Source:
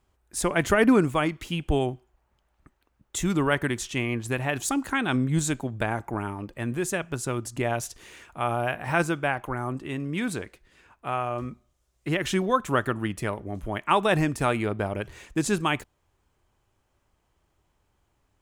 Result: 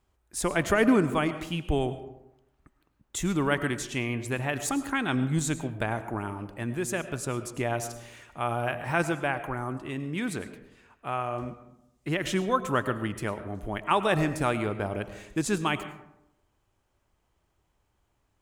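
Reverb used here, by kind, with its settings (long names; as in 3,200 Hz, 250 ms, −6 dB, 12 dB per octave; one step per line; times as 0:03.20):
comb and all-pass reverb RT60 0.85 s, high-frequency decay 0.45×, pre-delay 65 ms, DRR 11.5 dB
level −2.5 dB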